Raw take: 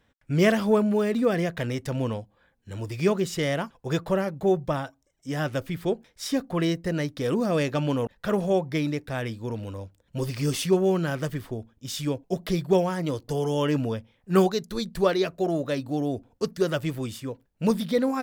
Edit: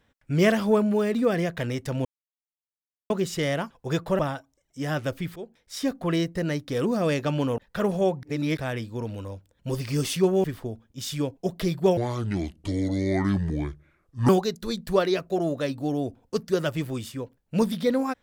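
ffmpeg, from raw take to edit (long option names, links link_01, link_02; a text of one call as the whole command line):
ffmpeg -i in.wav -filter_complex "[0:a]asplit=10[link_01][link_02][link_03][link_04][link_05][link_06][link_07][link_08][link_09][link_10];[link_01]atrim=end=2.05,asetpts=PTS-STARTPTS,afade=type=out:start_time=2.046:duration=0.004:curve=hsin[link_11];[link_02]atrim=start=2.05:end=3.1,asetpts=PTS-STARTPTS,volume=0[link_12];[link_03]atrim=start=3.1:end=4.192,asetpts=PTS-STARTPTS,afade=type=in:duration=0.004:curve=hsin[link_13];[link_04]atrim=start=4.678:end=5.85,asetpts=PTS-STARTPTS,afade=type=out:start_time=1.168:duration=0.004:curve=hsin:silence=0.158489[link_14];[link_05]atrim=start=5.85:end=8.722,asetpts=PTS-STARTPTS,afade=type=in:duration=0.55:silence=0.158489[link_15];[link_06]atrim=start=8.718:end=9.062,asetpts=PTS-STARTPTS,areverse[link_16];[link_07]atrim=start=9.058:end=10.932[link_17];[link_08]atrim=start=11.308:end=12.844[link_18];[link_09]atrim=start=12.84:end=14.37,asetpts=PTS-STARTPTS,asetrate=29106,aresample=44100[link_19];[link_10]atrim=start=14.366[link_20];[link_11][link_12][link_13]concat=n=3:v=0:a=1[link_21];[link_14][link_15]concat=n=2:v=0:a=1[link_22];[link_21][link_22]acrossfade=duration=0.004:curve1=hsin:curve2=hsin[link_23];[link_23][link_16]acrossfade=duration=0.004:curve1=hsin:curve2=hsin[link_24];[link_24][link_17]acrossfade=duration=0.004:curve1=hsin:curve2=hsin[link_25];[link_25][link_18]acrossfade=duration=0.004:curve1=hsin:curve2=hsin[link_26];[link_26][link_19]acrossfade=duration=0.004:curve1=hsin:curve2=hsin[link_27];[link_27][link_20]acrossfade=duration=0.004:curve1=hsin:curve2=hsin" out.wav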